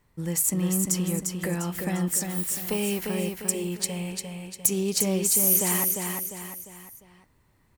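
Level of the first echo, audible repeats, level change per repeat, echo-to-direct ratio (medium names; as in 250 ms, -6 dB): -4.5 dB, 4, -7.5 dB, -3.5 dB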